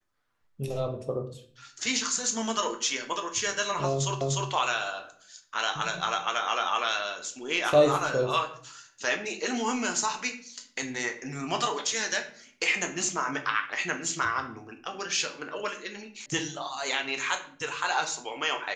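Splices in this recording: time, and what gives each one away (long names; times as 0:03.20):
0:04.21: the same again, the last 0.3 s
0:16.26: cut off before it has died away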